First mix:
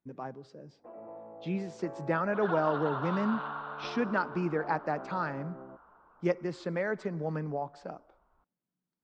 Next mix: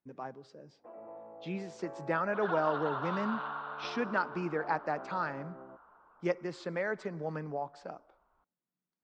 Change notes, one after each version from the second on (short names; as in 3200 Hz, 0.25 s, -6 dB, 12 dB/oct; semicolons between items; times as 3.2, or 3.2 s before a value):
master: add low shelf 350 Hz -7 dB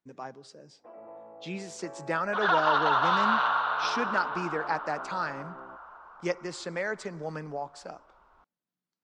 second sound +10.5 dB; master: remove tape spacing loss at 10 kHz 21 dB